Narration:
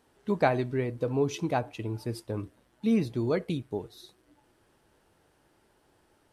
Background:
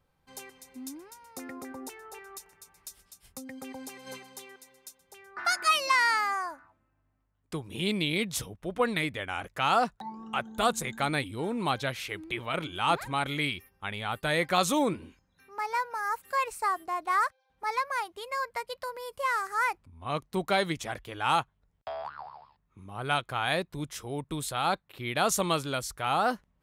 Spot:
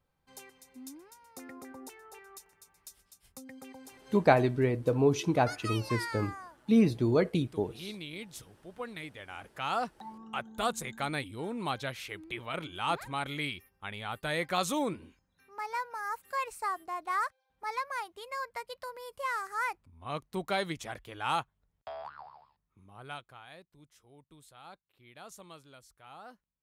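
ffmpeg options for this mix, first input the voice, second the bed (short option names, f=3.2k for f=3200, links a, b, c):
-filter_complex "[0:a]adelay=3850,volume=2dB[a];[1:a]volume=3dB,afade=t=out:st=3.52:d=0.71:silence=0.398107,afade=t=in:st=8.95:d=1.25:silence=0.375837,afade=t=out:st=22.11:d=1.35:silence=0.125893[b];[a][b]amix=inputs=2:normalize=0"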